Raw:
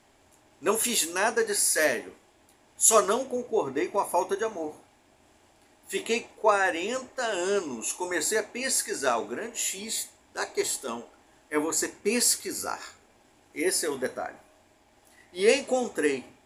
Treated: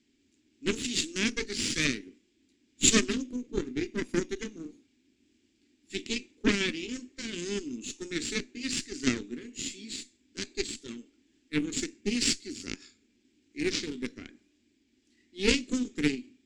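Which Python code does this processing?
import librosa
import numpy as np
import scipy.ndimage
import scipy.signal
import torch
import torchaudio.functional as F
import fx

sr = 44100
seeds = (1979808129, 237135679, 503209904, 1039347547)

y = fx.sample_hold(x, sr, seeds[0], rate_hz=11000.0, jitter_pct=0, at=(13.59, 14.13))
y = fx.cheby_harmonics(y, sr, harmonics=(6, 7), levels_db=(-14, -20), full_scale_db=-4.5)
y = fx.curve_eq(y, sr, hz=(150.0, 260.0, 380.0, 670.0, 960.0, 2300.0, 4900.0, 7700.0, 12000.0), db=(0, 14, 4, -22, -19, 3, 6, 1, -26))
y = y * 10.0 ** (-2.0 / 20.0)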